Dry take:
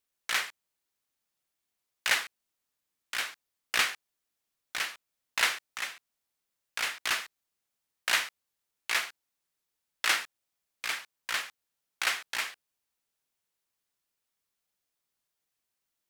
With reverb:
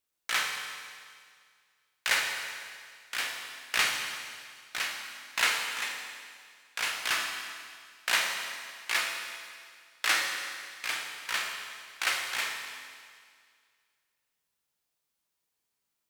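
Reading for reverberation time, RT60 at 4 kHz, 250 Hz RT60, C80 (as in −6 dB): 2.0 s, 2.0 s, 2.0 s, 4.5 dB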